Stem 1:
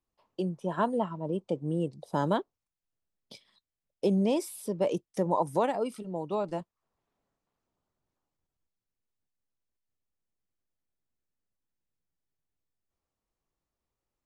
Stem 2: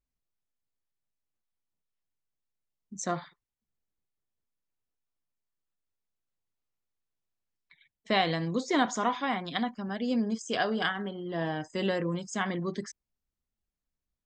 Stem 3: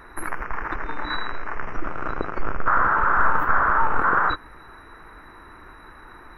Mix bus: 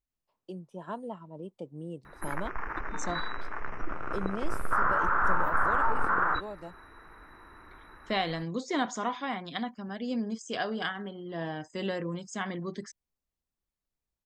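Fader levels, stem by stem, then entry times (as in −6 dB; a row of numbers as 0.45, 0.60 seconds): −10.0, −3.5, −7.0 decibels; 0.10, 0.00, 2.05 seconds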